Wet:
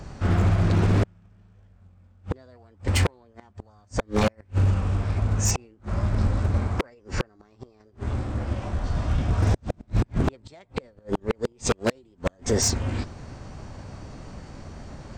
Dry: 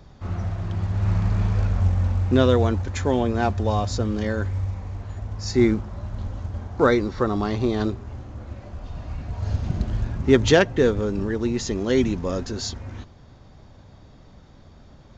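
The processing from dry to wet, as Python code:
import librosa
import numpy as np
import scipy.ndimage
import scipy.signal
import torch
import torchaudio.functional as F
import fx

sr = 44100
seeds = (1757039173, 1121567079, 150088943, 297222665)

y = fx.gate_flip(x, sr, shuts_db=-15.0, range_db=-41)
y = fx.formant_shift(y, sr, semitones=4)
y = 10.0 ** (-22.0 / 20.0) * (np.abs((y / 10.0 ** (-22.0 / 20.0) + 3.0) % 4.0 - 2.0) - 1.0)
y = y * 10.0 ** (8.0 / 20.0)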